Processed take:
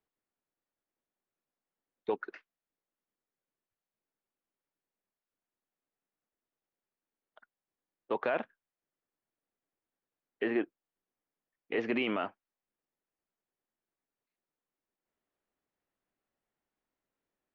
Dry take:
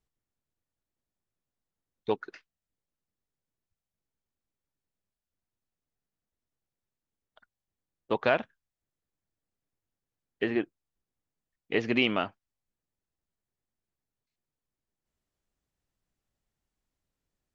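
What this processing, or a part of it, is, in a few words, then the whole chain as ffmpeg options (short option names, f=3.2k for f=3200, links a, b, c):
DJ mixer with the lows and highs turned down: -filter_complex "[0:a]acrossover=split=220 2800:gain=0.141 1 0.178[a][b][c];[a][b][c]amix=inputs=3:normalize=0,alimiter=limit=-23dB:level=0:latency=1:release=12,volume=1.5dB"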